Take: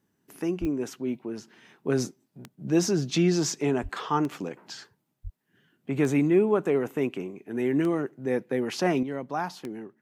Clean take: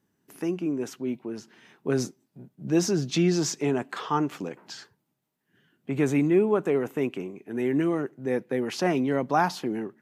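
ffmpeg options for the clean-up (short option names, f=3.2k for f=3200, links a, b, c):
-filter_complex "[0:a]adeclick=t=4,asplit=3[a][b][c];[a]afade=t=out:st=0.6:d=0.02[d];[b]highpass=f=140:w=0.5412,highpass=f=140:w=1.3066,afade=t=in:st=0.6:d=0.02,afade=t=out:st=0.72:d=0.02[e];[c]afade=t=in:st=0.72:d=0.02[f];[d][e][f]amix=inputs=3:normalize=0,asplit=3[g][h][i];[g]afade=t=out:st=3.82:d=0.02[j];[h]highpass=f=140:w=0.5412,highpass=f=140:w=1.3066,afade=t=in:st=3.82:d=0.02,afade=t=out:st=3.94:d=0.02[k];[i]afade=t=in:st=3.94:d=0.02[l];[j][k][l]amix=inputs=3:normalize=0,asplit=3[m][n][o];[m]afade=t=out:st=5.23:d=0.02[p];[n]highpass=f=140:w=0.5412,highpass=f=140:w=1.3066,afade=t=in:st=5.23:d=0.02,afade=t=out:st=5.35:d=0.02[q];[o]afade=t=in:st=5.35:d=0.02[r];[p][q][r]amix=inputs=3:normalize=0,asetnsamples=n=441:p=0,asendcmd='9.03 volume volume 7.5dB',volume=0dB"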